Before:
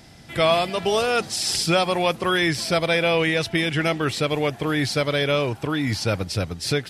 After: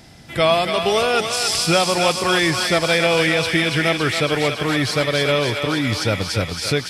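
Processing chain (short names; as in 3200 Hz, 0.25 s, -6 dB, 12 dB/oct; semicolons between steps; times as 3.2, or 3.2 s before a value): thinning echo 0.28 s, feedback 76%, high-pass 780 Hz, level -4.5 dB; gain +2.5 dB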